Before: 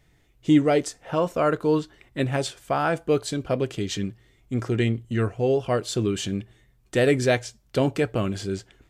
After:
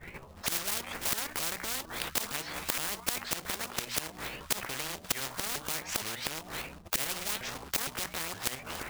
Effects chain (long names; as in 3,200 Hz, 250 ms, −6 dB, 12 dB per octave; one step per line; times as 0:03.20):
pitch shifter swept by a sawtooth +11 semitones, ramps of 463 ms
mains-hum notches 60/120/180/240/300 Hz
downward expander −52 dBFS
in parallel at +2 dB: output level in coarse steps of 15 dB
on the sum: auto-filter low-pass sine 2.6 Hz 990–2,200 Hz
floating-point word with a short mantissa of 2 bits
gate with flip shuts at −19 dBFS, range −27 dB
boost into a limiter +21 dB
every bin compressed towards the loudest bin 10 to 1
level −7 dB